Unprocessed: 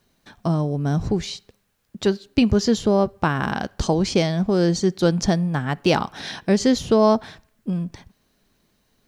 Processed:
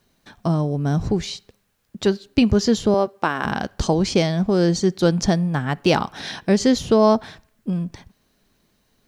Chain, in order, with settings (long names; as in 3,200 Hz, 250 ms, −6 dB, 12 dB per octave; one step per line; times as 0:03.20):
0:02.94–0:03.45: high-pass filter 300 Hz 12 dB per octave
level +1 dB